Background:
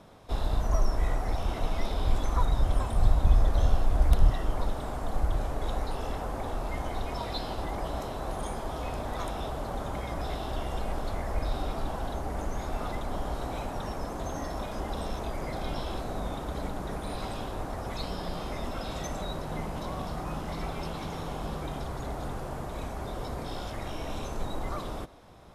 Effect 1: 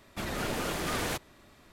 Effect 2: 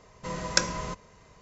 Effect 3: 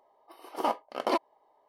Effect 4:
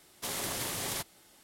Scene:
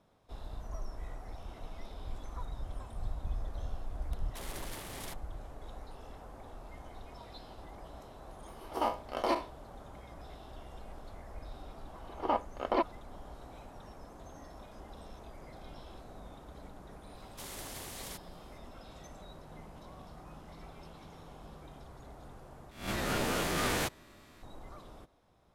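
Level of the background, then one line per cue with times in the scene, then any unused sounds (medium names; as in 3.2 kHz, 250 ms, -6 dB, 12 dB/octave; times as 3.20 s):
background -15.5 dB
4.12 s: add 4 -7 dB + local Wiener filter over 9 samples
8.17 s: add 3 -4.5 dB + spectral sustain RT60 0.32 s
11.65 s: add 3 -1 dB + distance through air 270 m
17.15 s: add 4 -10 dB
22.71 s: replace with 1 -1 dB + reverse spectral sustain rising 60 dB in 0.43 s
not used: 2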